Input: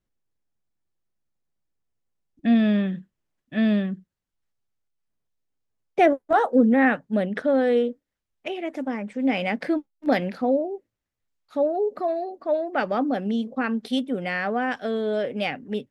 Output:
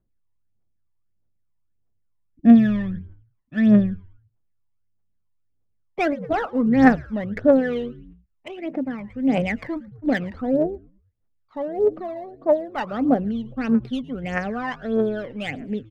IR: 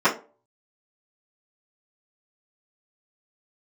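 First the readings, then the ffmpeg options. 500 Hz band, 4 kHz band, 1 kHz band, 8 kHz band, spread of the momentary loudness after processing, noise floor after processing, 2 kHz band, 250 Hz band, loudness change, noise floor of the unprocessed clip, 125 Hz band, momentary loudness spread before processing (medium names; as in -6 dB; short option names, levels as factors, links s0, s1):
0.0 dB, -4.5 dB, -2.0 dB, no reading, 16 LU, -69 dBFS, -1.0 dB, +3.5 dB, +2.0 dB, -84 dBFS, +5.0 dB, 12 LU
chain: -filter_complex "[0:a]adynamicsmooth=sensitivity=1:basefreq=1900,asplit=4[s0][s1][s2][s3];[s1]adelay=111,afreqshift=-100,volume=0.0944[s4];[s2]adelay=222,afreqshift=-200,volume=0.0359[s5];[s3]adelay=333,afreqshift=-300,volume=0.0136[s6];[s0][s4][s5][s6]amix=inputs=4:normalize=0,aphaser=in_gain=1:out_gain=1:delay=1.1:decay=0.71:speed=1.6:type=triangular,volume=0.794"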